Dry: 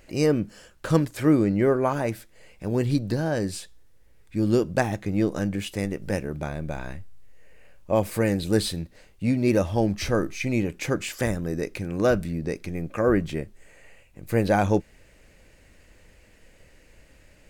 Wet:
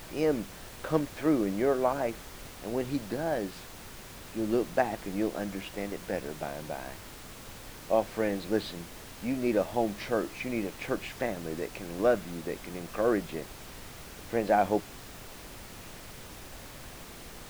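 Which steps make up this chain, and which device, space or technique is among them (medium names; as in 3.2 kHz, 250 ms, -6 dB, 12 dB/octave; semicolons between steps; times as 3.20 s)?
horn gramophone (band-pass 230–3400 Hz; peaking EQ 700 Hz +6.5 dB 0.43 oct; wow and flutter; pink noise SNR 13 dB); trim -5.5 dB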